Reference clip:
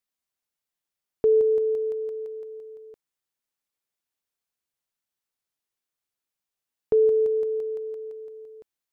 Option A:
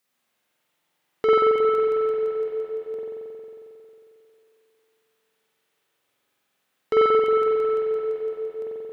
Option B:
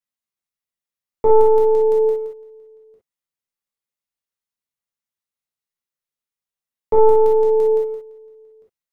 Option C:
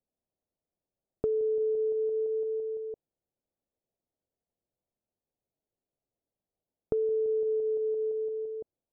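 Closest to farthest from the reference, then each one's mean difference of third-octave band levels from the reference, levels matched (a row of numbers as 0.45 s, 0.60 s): C, B, A; 1.5 dB, 3.5 dB, 8.0 dB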